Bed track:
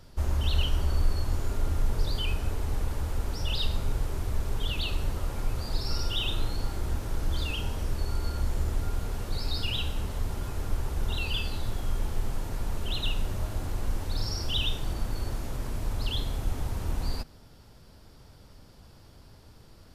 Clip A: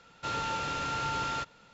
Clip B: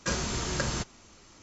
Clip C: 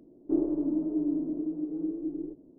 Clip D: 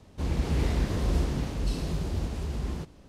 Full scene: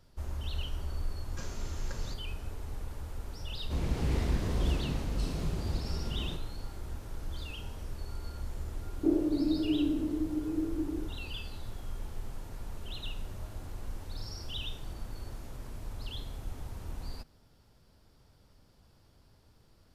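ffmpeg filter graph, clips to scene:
-filter_complex "[0:a]volume=0.316[s0];[2:a]atrim=end=1.42,asetpts=PTS-STARTPTS,volume=0.158,afade=t=in:d=0.004:c=hsin,afade=t=out:st=1.416:d=0.004:c=hsin,adelay=1310[s1];[4:a]atrim=end=3.08,asetpts=PTS-STARTPTS,volume=0.631,afade=t=in:d=0.004:c=hsin,afade=t=out:st=3.076:d=0.004:c=hsin,adelay=3520[s2];[3:a]atrim=end=2.58,asetpts=PTS-STARTPTS,volume=0.944,afade=t=in:d=0.004:c=hsin,afade=t=out:st=2.576:d=0.004:c=hsin,adelay=385434S[s3];[s0][s1][s2][s3]amix=inputs=4:normalize=0"

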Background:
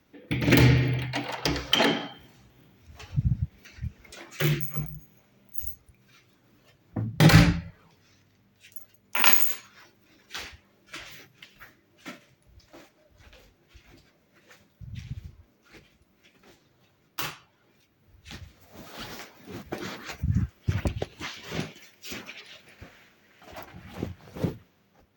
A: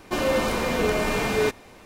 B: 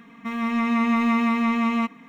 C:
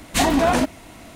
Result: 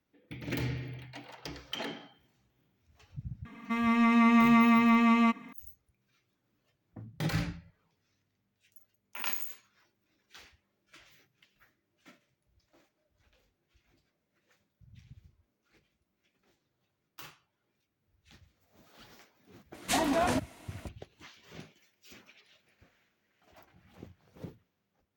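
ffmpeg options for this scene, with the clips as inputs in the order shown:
-filter_complex "[0:a]volume=0.158[s0];[3:a]highpass=f=170:p=1[s1];[2:a]atrim=end=2.08,asetpts=PTS-STARTPTS,volume=0.841,afade=t=in:d=0.004:c=hsin,afade=t=out:st=2.076:d=0.004:c=hsin,adelay=152145S[s2];[s1]atrim=end=1.15,asetpts=PTS-STARTPTS,volume=0.335,afade=t=in:d=0.004:c=hsin,afade=t=out:st=1.146:d=0.004:c=hsin,adelay=19740[s3];[s0][s2][s3]amix=inputs=3:normalize=0"

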